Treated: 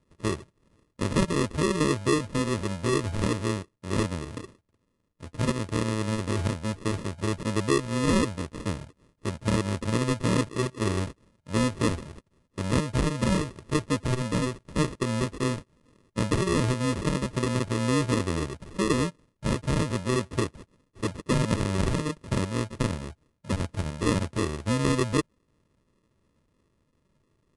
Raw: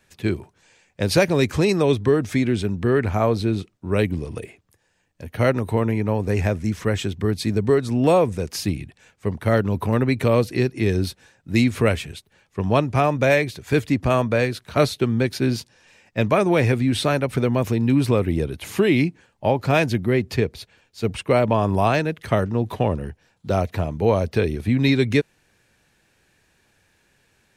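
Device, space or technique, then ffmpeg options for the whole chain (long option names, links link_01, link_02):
crushed at another speed: -af "asetrate=88200,aresample=44100,acrusher=samples=29:mix=1:aa=0.000001,asetrate=22050,aresample=44100,volume=-6.5dB"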